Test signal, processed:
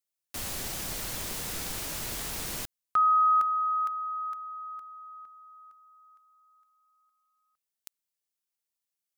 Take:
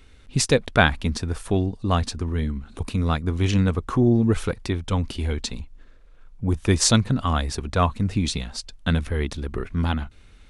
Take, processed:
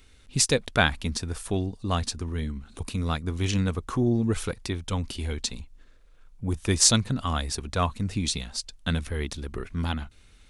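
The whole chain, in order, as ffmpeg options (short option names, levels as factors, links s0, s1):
-af "highshelf=f=3700:g=9.5,volume=0.531"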